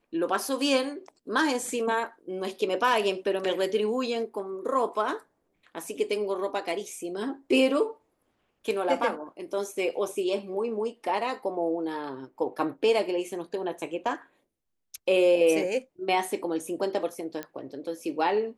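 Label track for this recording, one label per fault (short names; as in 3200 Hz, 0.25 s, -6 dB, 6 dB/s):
17.430000	17.430000	pop -19 dBFS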